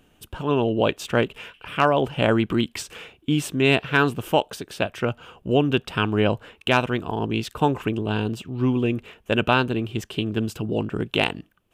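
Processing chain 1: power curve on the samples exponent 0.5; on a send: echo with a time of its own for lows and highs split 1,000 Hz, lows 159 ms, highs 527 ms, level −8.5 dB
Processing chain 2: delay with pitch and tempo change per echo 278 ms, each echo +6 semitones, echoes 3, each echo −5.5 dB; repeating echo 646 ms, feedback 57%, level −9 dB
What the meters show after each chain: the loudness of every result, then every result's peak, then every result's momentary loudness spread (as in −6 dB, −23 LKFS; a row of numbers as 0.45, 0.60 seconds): −17.0, −22.0 LKFS; −4.0, −4.5 dBFS; 5, 7 LU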